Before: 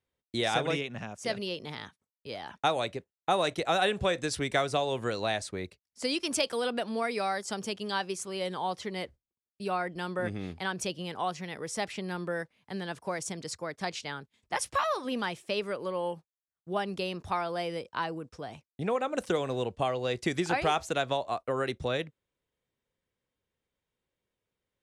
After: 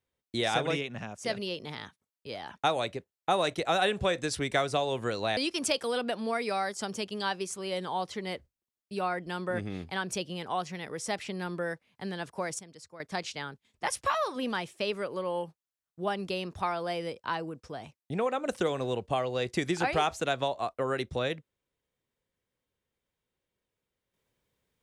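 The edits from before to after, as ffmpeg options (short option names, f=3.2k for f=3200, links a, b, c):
-filter_complex "[0:a]asplit=4[a][b][c][d];[a]atrim=end=5.372[e];[b]atrim=start=6.058:end=13.282[f];[c]atrim=start=13.278:end=13.692,asetpts=PTS-STARTPTS,volume=-12dB[g];[d]atrim=start=13.688[h];[e][f]acrossfade=d=0.004:c1=hsin:c2=hsin[i];[i][g]acrossfade=d=0.004:c1=hsin:c2=hsin[j];[j][h]acrossfade=d=0.004:c1=hsin:c2=hsin"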